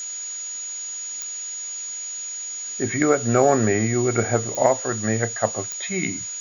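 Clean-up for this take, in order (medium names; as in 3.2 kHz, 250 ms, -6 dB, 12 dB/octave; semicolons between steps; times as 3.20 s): de-click; band-stop 6.8 kHz, Q 30; noise reduction 30 dB, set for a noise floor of -32 dBFS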